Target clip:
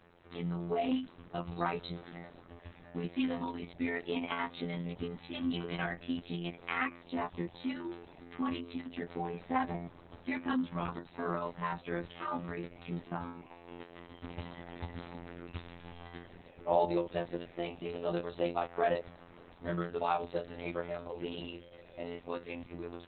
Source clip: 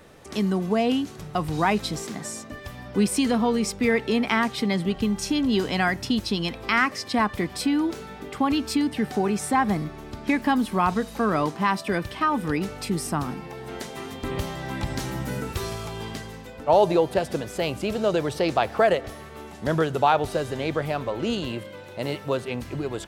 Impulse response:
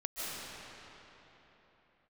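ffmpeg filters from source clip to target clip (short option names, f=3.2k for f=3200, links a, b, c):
-filter_complex "[0:a]asettb=1/sr,asplit=3[a][b][c];[a]atrim=end=7.024[d];[b]atrim=start=7.02:end=7.6,asetpts=PTS-STARTPTS,afade=t=in:d=0.004:c=qsin,afade=t=out:st=0.576:d=0.004:c=qsin,equalizer=f=1.6k:w=3.1:g=-9[e];[c]atrim=start=7.596[f];[d][e]acrossfade=d=0.004:c1=hsin:c2=qsin[g];[g][f]acrossfade=d=0.004:c1=qsin:c2=hsin,afftfilt=real='hypot(re,im)*cos(PI*b)':imag='0':win_size=2048:overlap=0.75,volume=-6.5dB" -ar 48000 -c:a libopus -b:a 6k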